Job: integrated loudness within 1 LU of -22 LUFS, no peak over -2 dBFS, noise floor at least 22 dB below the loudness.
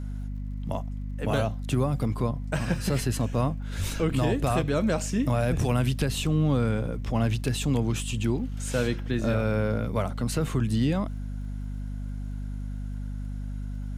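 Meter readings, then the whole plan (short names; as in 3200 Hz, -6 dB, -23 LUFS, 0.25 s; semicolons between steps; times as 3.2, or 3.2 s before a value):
ticks 49/s; hum 50 Hz; harmonics up to 250 Hz; hum level -30 dBFS; loudness -28.0 LUFS; peak -13.0 dBFS; loudness target -22.0 LUFS
-> de-click; de-hum 50 Hz, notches 5; gain +6 dB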